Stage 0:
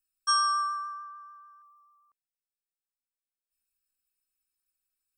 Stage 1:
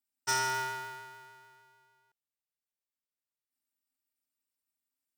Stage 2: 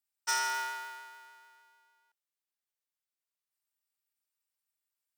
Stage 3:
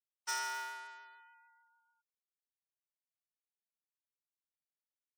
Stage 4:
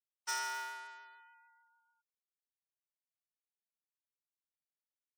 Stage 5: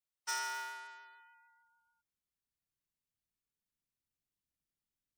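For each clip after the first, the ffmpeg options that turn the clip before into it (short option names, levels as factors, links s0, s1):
-af "aeval=exprs='val(0)*sgn(sin(2*PI*260*n/s))':c=same,volume=0.531"
-af "highpass=740"
-af "afftfilt=real='re*gte(hypot(re,im),0.002)':imag='im*gte(hypot(re,im),0.002)':win_size=1024:overlap=0.75,volume=0.473"
-af anull
-af "asubboost=boost=7:cutoff=250"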